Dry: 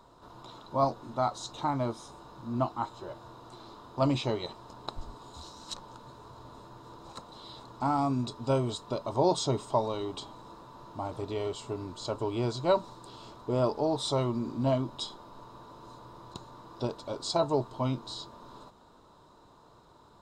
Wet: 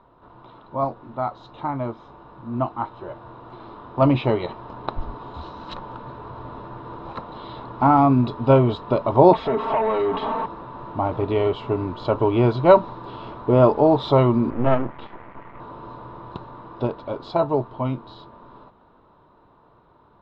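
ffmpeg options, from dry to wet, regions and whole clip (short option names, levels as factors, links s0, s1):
-filter_complex "[0:a]asettb=1/sr,asplit=3[s0][s1][s2];[s0]atrim=end=9.334[s3];[s1]atrim=start=9.33:end=10.46,asetpts=PTS-STARTPTS,afade=t=in:d=0.004:c=qsin,afade=t=out:st=1.126:d=0.004:c=qsin,aecho=1:1:4.5:0.96,atrim=end_sample=49833,acompressor=threshold=0.0126:ratio=4:attack=3.2:release=140:knee=1:detection=peak,asplit=2[s4][s5];[s5]highpass=f=720:p=1,volume=12.6,asoftclip=type=tanh:threshold=0.0596[s6];[s4][s6]amix=inputs=2:normalize=0,lowpass=f=1300:p=1,volume=0.501[s7];[s2]atrim=start=10.456[s8];[s3][s7]acrossfade=d=0.004:c1=hsin:c2=qsin[s9];[s9][s8]acrossfade=d=0.004:c1=qsin:c2=hsin,asettb=1/sr,asplit=3[s10][s11][s12];[s10]atrim=end=14.504[s13];[s11]atrim=start=14.5:end=15.6,asetpts=PTS-STARTPTS,afade=t=in:d=0.004:c=qsin,afade=t=out:st=1.096:d=0.004:c=qsin,lowpass=f=2600:w=0.5412,lowpass=f=2600:w=1.3066,aeval=exprs='max(val(0),0)':c=same[s14];[s12]atrim=start=15.596[s15];[s13][s14]acrossfade=d=0.004:c1=hsin:c2=qsin[s16];[s16][s15]acrossfade=d=0.004:c1=qsin:c2=hsin,dynaudnorm=f=250:g=31:m=3.76,lowpass=f=2800:w=0.5412,lowpass=f=2800:w=1.3066,volume=1.33"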